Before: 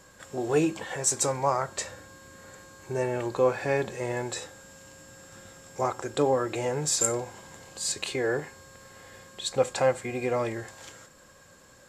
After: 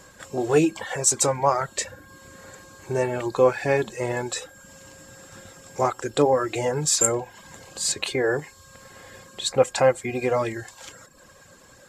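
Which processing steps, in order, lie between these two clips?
reverb reduction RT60 0.67 s
level +5.5 dB

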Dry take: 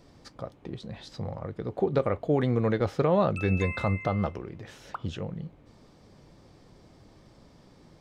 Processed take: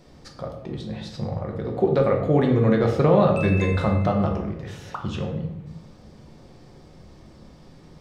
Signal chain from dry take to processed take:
rectangular room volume 270 cubic metres, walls mixed, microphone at 0.97 metres
level +3 dB

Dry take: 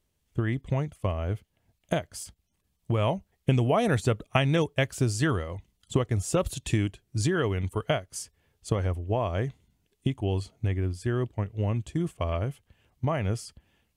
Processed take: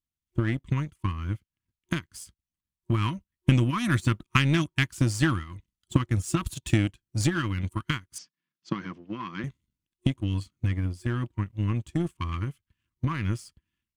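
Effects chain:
brick-wall band-stop 360–940 Hz
power curve on the samples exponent 1.4
0:08.18–0:09.44: elliptic band-pass filter 170–5,400 Hz, stop band 40 dB
level +6.5 dB

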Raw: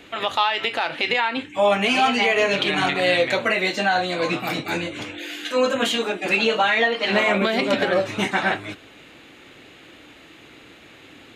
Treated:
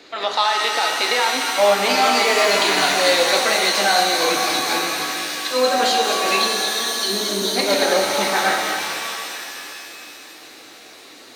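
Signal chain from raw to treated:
high shelf with overshoot 3,700 Hz +7 dB, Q 3
on a send: delay with a high-pass on its return 221 ms, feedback 73%, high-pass 2,500 Hz, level −6 dB
on the sum: gain on a spectral selection 0:06.42–0:07.56, 450–3,000 Hz −18 dB
three-way crossover with the lows and the highs turned down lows −16 dB, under 270 Hz, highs −14 dB, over 5,300 Hz
reverb with rising layers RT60 2.5 s, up +7 semitones, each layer −2 dB, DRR 3.5 dB
level +1.5 dB

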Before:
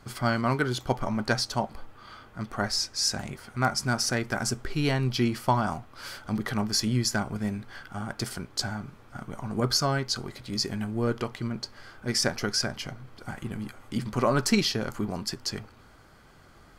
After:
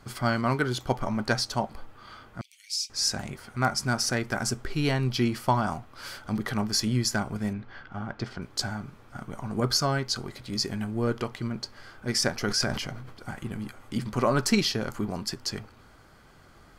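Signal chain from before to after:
0:02.41–0:02.90: Chebyshev high-pass with heavy ripple 2,200 Hz, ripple 3 dB
0:07.53–0:08.42: high-frequency loss of the air 200 metres
0:12.34–0:13.13: level that may fall only so fast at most 40 dB per second

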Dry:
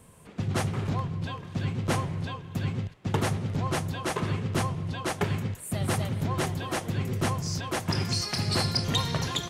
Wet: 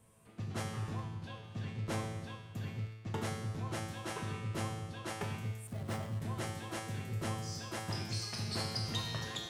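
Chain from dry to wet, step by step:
tuned comb filter 110 Hz, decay 1.1 s, harmonics all, mix 90%
0:05.67–0:06.22: slack as between gear wheels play −43.5 dBFS
level +4 dB

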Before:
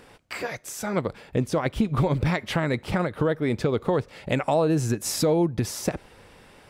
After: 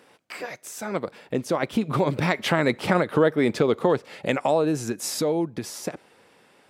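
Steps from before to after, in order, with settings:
source passing by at 0:03.02, 7 m/s, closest 7.5 metres
high-pass filter 200 Hz 12 dB per octave
level +5.5 dB

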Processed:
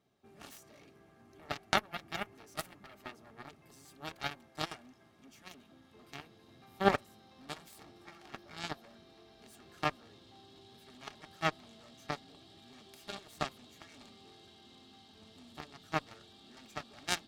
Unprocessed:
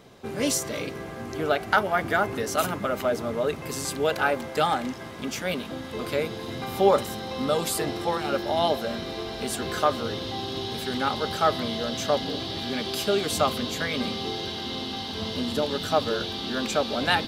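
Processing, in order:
harmonic generator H 3 −9 dB, 4 −33 dB, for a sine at −6.5 dBFS
notch comb filter 500 Hz

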